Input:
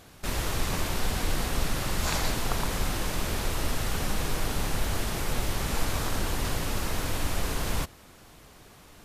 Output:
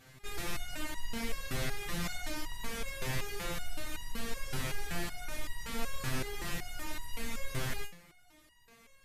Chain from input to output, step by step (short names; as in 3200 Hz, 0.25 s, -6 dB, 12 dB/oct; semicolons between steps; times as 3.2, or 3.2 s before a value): ten-band EQ 125 Hz +5 dB, 1000 Hz -3 dB, 2000 Hz +6 dB; stepped resonator 5.3 Hz 130–960 Hz; gain +4.5 dB